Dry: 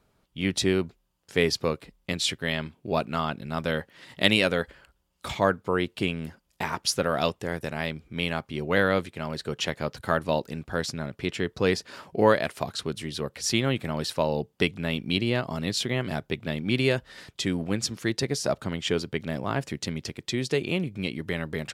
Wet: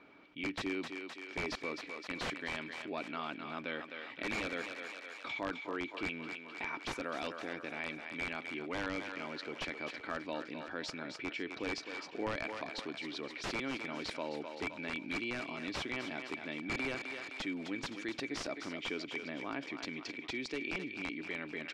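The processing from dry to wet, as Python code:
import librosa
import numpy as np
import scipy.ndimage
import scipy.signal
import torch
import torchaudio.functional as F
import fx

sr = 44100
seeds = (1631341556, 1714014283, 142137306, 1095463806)

y = np.diff(x, prepend=0.0)
y = fx.env_lowpass(y, sr, base_hz=2700.0, full_db=-31.0)
y = fx.small_body(y, sr, hz=(290.0, 2300.0), ring_ms=50, db=17)
y = (np.mod(10.0 ** (26.0 / 20.0) * y + 1.0, 2.0) - 1.0) / 10.0 ** (26.0 / 20.0)
y = fx.spacing_loss(y, sr, db_at_10k=32)
y = fx.echo_thinned(y, sr, ms=259, feedback_pct=49, hz=420.0, wet_db=-11.0)
y = fx.env_flatten(y, sr, amount_pct=50)
y = y * 10.0 ** (3.0 / 20.0)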